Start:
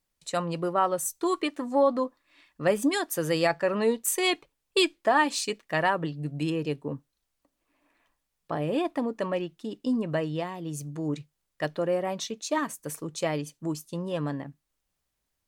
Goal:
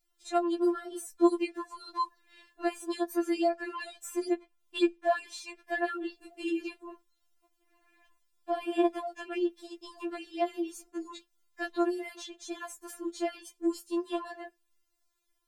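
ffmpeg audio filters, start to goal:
ffmpeg -i in.wav -filter_complex "[0:a]acrossover=split=950|2300[link_01][link_02][link_03];[link_01]acompressor=threshold=-30dB:ratio=4[link_04];[link_02]acompressor=threshold=-43dB:ratio=4[link_05];[link_03]acompressor=threshold=-48dB:ratio=4[link_06];[link_04][link_05][link_06]amix=inputs=3:normalize=0,afftfilt=real='re*4*eq(mod(b,16),0)':imag='im*4*eq(mod(b,16),0)':win_size=2048:overlap=0.75,volume=3.5dB" out.wav

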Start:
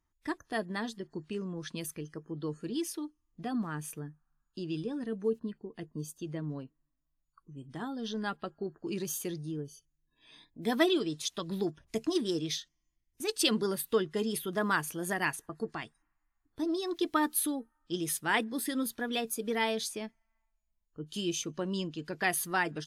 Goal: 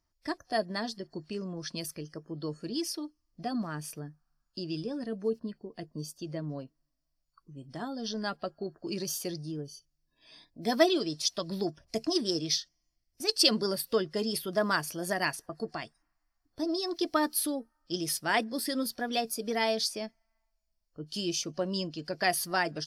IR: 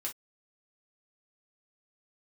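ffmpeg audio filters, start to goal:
-af "superequalizer=8b=2.24:14b=3.55"

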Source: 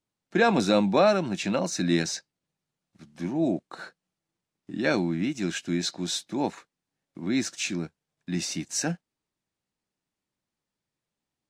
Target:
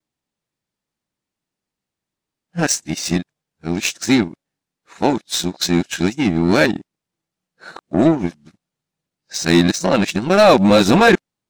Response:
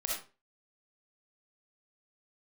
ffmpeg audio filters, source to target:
-af "areverse,apsyclip=16dB,aeval=exprs='1.06*(cos(1*acos(clip(val(0)/1.06,-1,1)))-cos(1*PI/2))+0.106*(cos(3*acos(clip(val(0)/1.06,-1,1)))-cos(3*PI/2))+0.0596*(cos(7*acos(clip(val(0)/1.06,-1,1)))-cos(7*PI/2))':channel_layout=same,volume=-3dB"

